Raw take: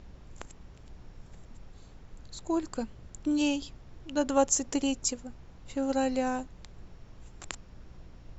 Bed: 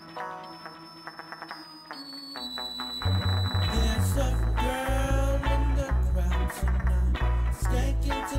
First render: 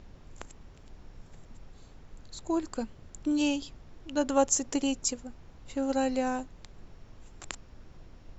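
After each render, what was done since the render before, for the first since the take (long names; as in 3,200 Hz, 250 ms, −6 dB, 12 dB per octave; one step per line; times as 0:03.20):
hum removal 60 Hz, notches 3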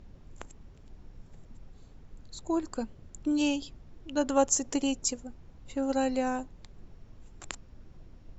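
broadband denoise 6 dB, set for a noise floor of −53 dBFS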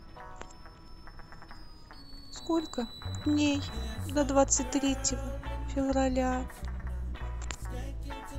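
mix in bed −12 dB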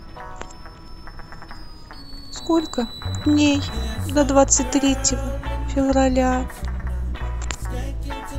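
level +10.5 dB
brickwall limiter −3 dBFS, peak gain reduction 2 dB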